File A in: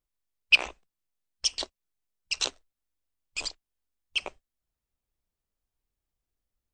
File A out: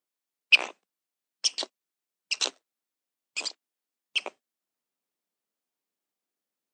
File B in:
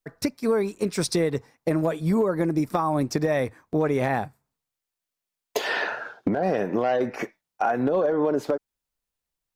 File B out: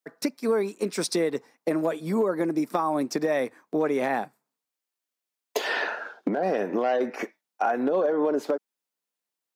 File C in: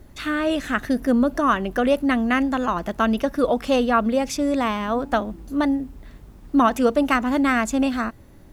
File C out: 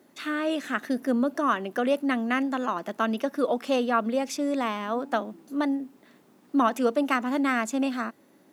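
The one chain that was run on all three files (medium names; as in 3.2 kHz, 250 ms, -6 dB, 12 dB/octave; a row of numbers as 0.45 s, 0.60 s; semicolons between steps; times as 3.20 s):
high-pass 210 Hz 24 dB/octave; normalise loudness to -27 LUFS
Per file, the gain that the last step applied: +1.0 dB, -1.0 dB, -5.0 dB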